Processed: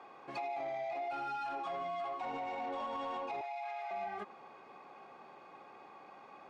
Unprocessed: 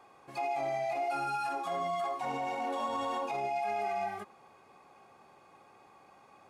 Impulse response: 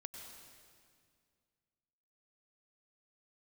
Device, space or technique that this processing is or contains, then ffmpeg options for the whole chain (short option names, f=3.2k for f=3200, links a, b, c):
AM radio: -filter_complex "[0:a]highpass=190,lowpass=3.8k,acompressor=threshold=-40dB:ratio=5,asoftclip=type=tanh:threshold=-37dB,asettb=1/sr,asplit=3[a][b][c];[a]atrim=end=3.414[d];[b]atrim=start=3.41:end=3.91,asetpts=PTS-STARTPTS,afade=t=in:d=0.004:c=qsin,afade=t=out:st=0.496:d=0.004:c=qsin,highpass=f=720:w=0.5412,highpass=f=720:w=1.3066[e];[c]atrim=start=3.906[f];[d][e]acrossfade=d=0.004:c1=hsin:c2=qsin[g];[g][f]acrossfade=d=0.004:c1=qsin:c2=hsin,volume=4.5dB"